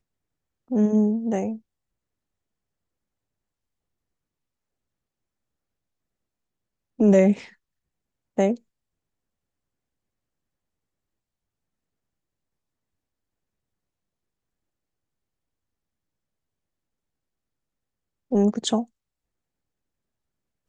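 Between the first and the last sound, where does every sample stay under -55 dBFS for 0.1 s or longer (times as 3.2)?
1.61–6.99
7.55–8.37
8.6–18.31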